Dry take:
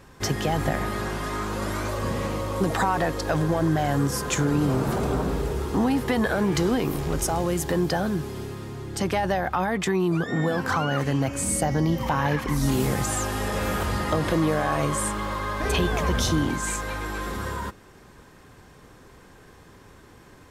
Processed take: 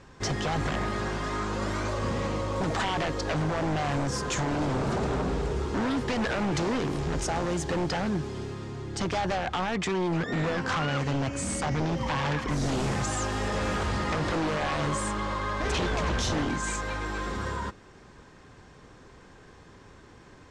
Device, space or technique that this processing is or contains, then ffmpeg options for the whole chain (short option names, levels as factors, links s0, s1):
synthesiser wavefolder: -af "aeval=exprs='0.0944*(abs(mod(val(0)/0.0944+3,4)-2)-1)':c=same,lowpass=f=7600:w=0.5412,lowpass=f=7600:w=1.3066,volume=0.841"